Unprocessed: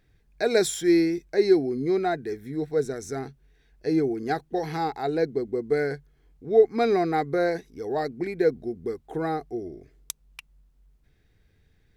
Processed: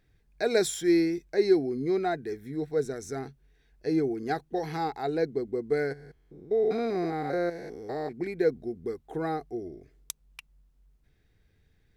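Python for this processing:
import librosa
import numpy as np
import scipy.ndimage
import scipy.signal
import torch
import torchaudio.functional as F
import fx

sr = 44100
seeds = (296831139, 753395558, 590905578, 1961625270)

y = fx.spec_steps(x, sr, hold_ms=200, at=(5.92, 8.11), fade=0.02)
y = y * 10.0 ** (-3.0 / 20.0)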